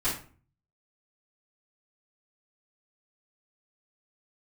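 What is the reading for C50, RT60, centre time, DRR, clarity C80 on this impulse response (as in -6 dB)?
5.5 dB, 0.40 s, 31 ms, -14.5 dB, 11.0 dB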